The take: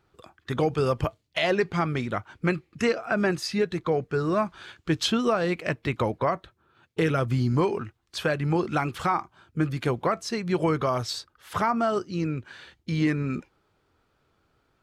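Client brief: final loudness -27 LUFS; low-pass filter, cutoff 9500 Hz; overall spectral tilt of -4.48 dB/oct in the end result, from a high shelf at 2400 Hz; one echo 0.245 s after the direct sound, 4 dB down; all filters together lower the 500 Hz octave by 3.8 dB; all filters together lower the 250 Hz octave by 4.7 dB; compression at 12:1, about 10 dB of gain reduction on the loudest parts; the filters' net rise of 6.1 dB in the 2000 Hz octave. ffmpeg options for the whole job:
-af "lowpass=9.5k,equalizer=f=250:t=o:g=-6,equalizer=f=500:t=o:g=-3.5,equalizer=f=2k:t=o:g=6,highshelf=f=2.4k:g=4,acompressor=threshold=-28dB:ratio=12,aecho=1:1:245:0.631,volume=5dB"

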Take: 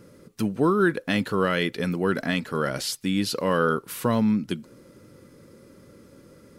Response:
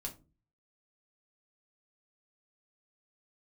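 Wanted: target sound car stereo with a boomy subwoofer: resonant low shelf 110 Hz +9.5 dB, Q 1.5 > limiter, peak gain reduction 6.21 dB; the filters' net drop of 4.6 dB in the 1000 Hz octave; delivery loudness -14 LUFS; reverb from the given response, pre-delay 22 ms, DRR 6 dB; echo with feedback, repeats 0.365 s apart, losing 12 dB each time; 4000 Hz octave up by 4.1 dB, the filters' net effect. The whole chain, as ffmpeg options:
-filter_complex "[0:a]equalizer=f=1k:t=o:g=-6.5,equalizer=f=4k:t=o:g=5.5,aecho=1:1:365|730|1095:0.251|0.0628|0.0157,asplit=2[a][b];[1:a]atrim=start_sample=2205,adelay=22[c];[b][c]afir=irnorm=-1:irlink=0,volume=-4dB[d];[a][d]amix=inputs=2:normalize=0,lowshelf=f=110:t=q:w=1.5:g=9.5,volume=12dB,alimiter=limit=-3.5dB:level=0:latency=1"

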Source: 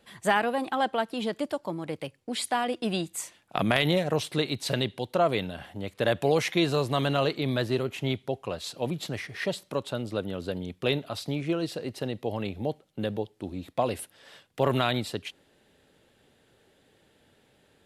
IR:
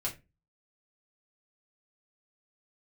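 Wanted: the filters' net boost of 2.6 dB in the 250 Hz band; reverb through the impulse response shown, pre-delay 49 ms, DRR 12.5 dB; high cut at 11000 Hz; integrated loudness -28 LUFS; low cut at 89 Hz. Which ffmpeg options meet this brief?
-filter_complex "[0:a]highpass=89,lowpass=11k,equalizer=f=250:t=o:g=3.5,asplit=2[a][b];[1:a]atrim=start_sample=2205,adelay=49[c];[b][c]afir=irnorm=-1:irlink=0,volume=-15.5dB[d];[a][d]amix=inputs=2:normalize=0"

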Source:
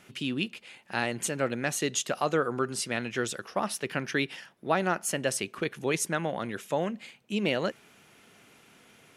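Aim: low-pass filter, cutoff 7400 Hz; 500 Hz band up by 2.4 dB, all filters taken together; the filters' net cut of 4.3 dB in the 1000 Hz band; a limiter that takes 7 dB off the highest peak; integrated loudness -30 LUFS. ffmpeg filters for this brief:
-af "lowpass=7.4k,equalizer=f=500:t=o:g=5,equalizer=f=1k:t=o:g=-8.5,volume=2.5dB,alimiter=limit=-17dB:level=0:latency=1"

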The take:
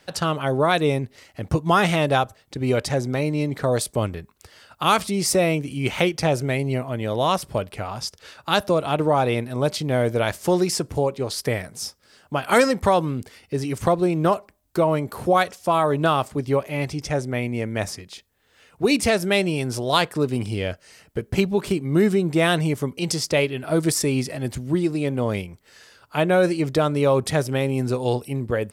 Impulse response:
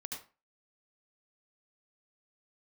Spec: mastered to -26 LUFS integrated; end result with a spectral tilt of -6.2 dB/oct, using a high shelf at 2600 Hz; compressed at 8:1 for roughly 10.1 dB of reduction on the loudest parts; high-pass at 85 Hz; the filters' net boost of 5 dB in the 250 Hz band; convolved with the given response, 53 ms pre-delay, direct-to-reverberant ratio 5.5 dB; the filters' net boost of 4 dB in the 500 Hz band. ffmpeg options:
-filter_complex "[0:a]highpass=85,equalizer=f=250:t=o:g=6,equalizer=f=500:t=o:g=3.5,highshelf=f=2.6k:g=-5,acompressor=threshold=-20dB:ratio=8,asplit=2[a][b];[1:a]atrim=start_sample=2205,adelay=53[c];[b][c]afir=irnorm=-1:irlink=0,volume=-4dB[d];[a][d]amix=inputs=2:normalize=0,volume=-1dB"

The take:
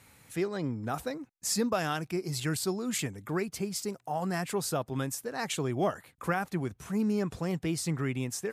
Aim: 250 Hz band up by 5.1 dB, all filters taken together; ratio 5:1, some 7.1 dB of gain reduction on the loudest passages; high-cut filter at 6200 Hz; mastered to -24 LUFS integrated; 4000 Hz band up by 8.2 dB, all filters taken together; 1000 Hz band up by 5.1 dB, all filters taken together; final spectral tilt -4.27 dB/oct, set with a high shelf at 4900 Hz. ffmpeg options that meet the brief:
-af "lowpass=6.2k,equalizer=f=250:t=o:g=6.5,equalizer=f=1k:t=o:g=6,equalizer=f=4k:t=o:g=8.5,highshelf=f=4.9k:g=5.5,acompressor=threshold=-28dB:ratio=5,volume=8.5dB"

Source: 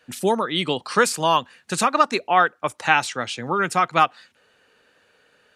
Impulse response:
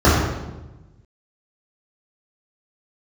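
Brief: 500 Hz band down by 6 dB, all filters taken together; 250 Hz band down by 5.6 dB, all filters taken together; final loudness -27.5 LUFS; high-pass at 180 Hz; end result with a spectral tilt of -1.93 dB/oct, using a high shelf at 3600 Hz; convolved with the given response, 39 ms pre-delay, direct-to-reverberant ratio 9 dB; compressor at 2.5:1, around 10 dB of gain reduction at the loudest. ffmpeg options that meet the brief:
-filter_complex "[0:a]highpass=180,equalizer=f=250:t=o:g=-3.5,equalizer=f=500:t=o:g=-7,highshelf=f=3.6k:g=5,acompressor=threshold=-27dB:ratio=2.5,asplit=2[a][b];[1:a]atrim=start_sample=2205,adelay=39[c];[b][c]afir=irnorm=-1:irlink=0,volume=-35.5dB[d];[a][d]amix=inputs=2:normalize=0,volume=0.5dB"

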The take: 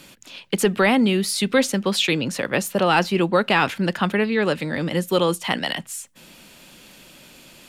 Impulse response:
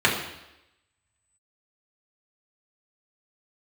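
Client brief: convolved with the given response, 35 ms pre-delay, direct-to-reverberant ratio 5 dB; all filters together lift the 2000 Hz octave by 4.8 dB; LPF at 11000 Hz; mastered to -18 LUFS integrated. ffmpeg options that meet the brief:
-filter_complex "[0:a]lowpass=11k,equalizer=f=2k:t=o:g=6,asplit=2[a][b];[1:a]atrim=start_sample=2205,adelay=35[c];[b][c]afir=irnorm=-1:irlink=0,volume=-23.5dB[d];[a][d]amix=inputs=2:normalize=0"

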